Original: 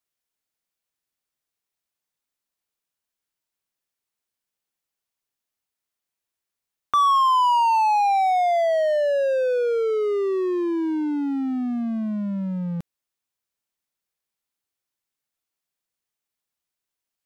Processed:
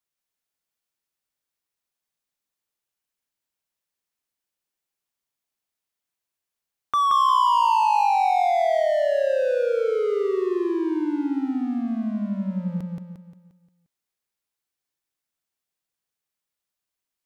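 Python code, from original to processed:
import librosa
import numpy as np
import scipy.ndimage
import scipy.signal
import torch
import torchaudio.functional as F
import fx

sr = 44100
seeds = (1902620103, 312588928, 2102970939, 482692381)

y = fx.echo_feedback(x, sr, ms=176, feedback_pct=44, wet_db=-3)
y = y * 10.0 ** (-2.5 / 20.0)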